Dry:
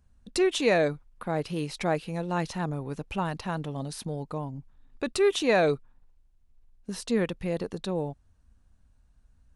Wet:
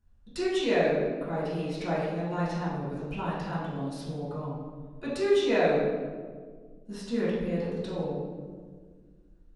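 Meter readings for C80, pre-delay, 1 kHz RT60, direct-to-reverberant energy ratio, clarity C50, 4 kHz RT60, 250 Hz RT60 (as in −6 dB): 2.0 dB, 3 ms, 1.4 s, −11.0 dB, −1.0 dB, 0.95 s, 2.4 s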